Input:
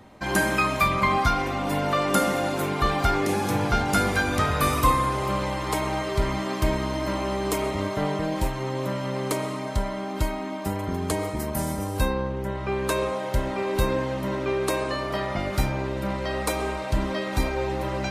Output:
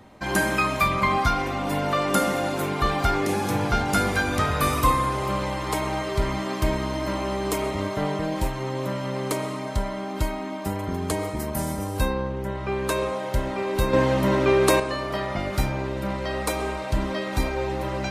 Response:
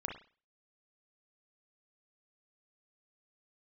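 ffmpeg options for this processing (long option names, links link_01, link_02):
-filter_complex "[0:a]asettb=1/sr,asplit=3[link_01][link_02][link_03];[link_01]atrim=end=13.934[link_04];[link_02]atrim=start=13.93:end=14.8,asetpts=PTS-STARTPTS,afade=type=in:duration=0.004:curve=qsin,afade=type=out:start_time=0.866:duration=0.004:curve=qsin,acontrast=83[link_05];[link_03]atrim=start=14.796[link_06];[link_04][link_05]acrossfade=duration=0.004:curve1=hsin:curve2=qsin[link_07];[link_07][link_06]acrossfade=duration=0.004:curve1=qsin:curve2=hsin"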